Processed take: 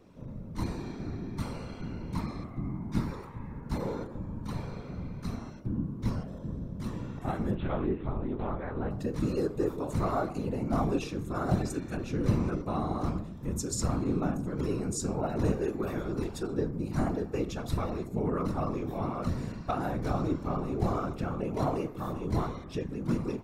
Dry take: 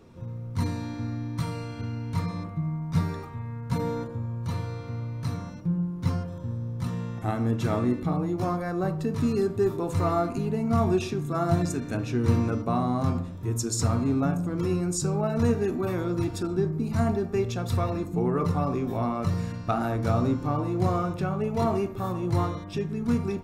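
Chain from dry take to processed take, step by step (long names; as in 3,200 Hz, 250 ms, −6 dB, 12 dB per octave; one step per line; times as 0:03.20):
0:07.55–0:08.91: one-pitch LPC vocoder at 8 kHz 150 Hz
random phases in short frames
level −5 dB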